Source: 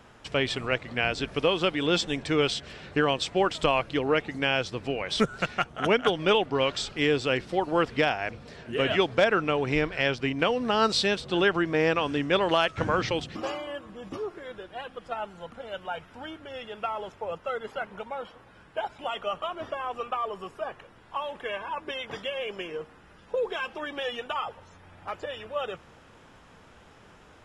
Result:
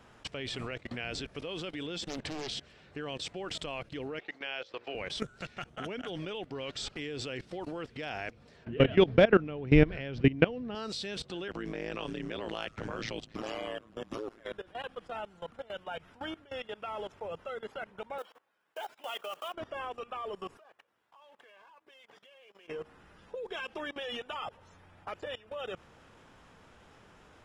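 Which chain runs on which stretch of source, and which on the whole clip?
2.08–2.57 s: treble shelf 6.2 kHz -6.5 dB + loudspeaker Doppler distortion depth 0.93 ms
4.19–4.95 s: three-band isolator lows -22 dB, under 410 Hz, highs -24 dB, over 5.4 kHz + hum notches 60/120/180/240/300/360/420/480/540/600 Hz
8.65–10.75 s: low-pass 3.6 kHz + bass shelf 400 Hz +11 dB
11.48–14.54 s: AM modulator 110 Hz, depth 95% + three bands compressed up and down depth 40%
18.18–19.54 s: block-companded coder 5-bit + expander -46 dBFS + Bessel high-pass 510 Hz
20.57–22.68 s: companding laws mixed up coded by A + high-pass 490 Hz 6 dB/octave + compression 2:1, threshold -58 dBFS
whole clip: dynamic bell 1 kHz, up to -6 dB, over -38 dBFS, Q 1.1; level held to a coarse grid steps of 20 dB; trim +2 dB

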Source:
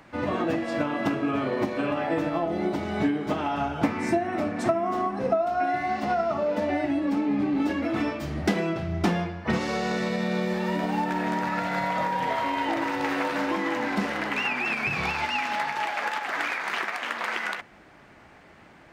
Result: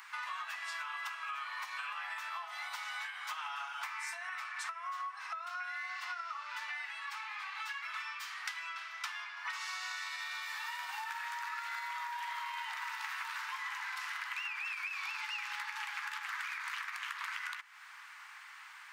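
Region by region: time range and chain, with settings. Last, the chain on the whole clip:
4.29–9.37 s: high-pass 930 Hz + treble shelf 7.1 kHz -8 dB
whole clip: steep high-pass 990 Hz 48 dB/octave; treble shelf 6.5 kHz +7 dB; compression, threshold -42 dBFS; trim +3.5 dB

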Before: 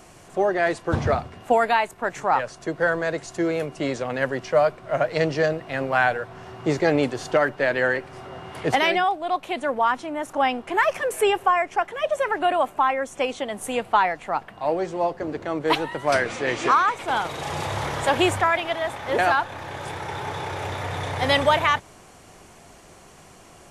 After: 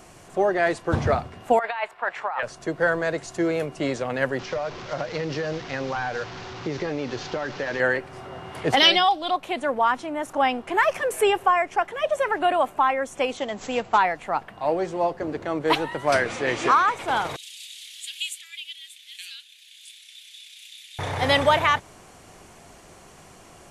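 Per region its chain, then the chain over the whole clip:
1.59–2.43 s: three-band isolator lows -24 dB, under 590 Hz, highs -22 dB, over 4 kHz + band-stop 6.3 kHz, Q 8.4 + compressor with a negative ratio -27 dBFS
4.39–7.80 s: one-bit delta coder 32 kbps, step -31 dBFS + band-stop 650 Hz, Q 8.7 + compression 12:1, threshold -23 dBFS
8.77–9.31 s: high-order bell 4.1 kHz +13 dB 1.1 oct + comb 3.7 ms, depth 51%
13.37–13.98 s: CVSD coder 64 kbps + brick-wall FIR low-pass 7.8 kHz
17.36–20.99 s: steep high-pass 2.9 kHz + peaking EQ 5.6 kHz -6 dB 0.45 oct
whole clip: none

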